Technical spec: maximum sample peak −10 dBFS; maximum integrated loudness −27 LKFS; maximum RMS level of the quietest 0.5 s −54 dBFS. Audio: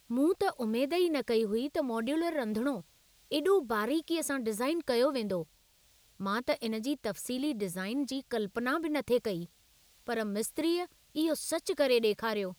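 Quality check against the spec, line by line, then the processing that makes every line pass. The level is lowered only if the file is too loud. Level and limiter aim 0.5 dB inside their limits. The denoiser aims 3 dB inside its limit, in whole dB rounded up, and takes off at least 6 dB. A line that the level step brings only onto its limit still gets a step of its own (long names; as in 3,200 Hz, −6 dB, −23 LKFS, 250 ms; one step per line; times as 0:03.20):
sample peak −15.0 dBFS: in spec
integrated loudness −32.0 LKFS: in spec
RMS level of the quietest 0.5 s −65 dBFS: in spec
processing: no processing needed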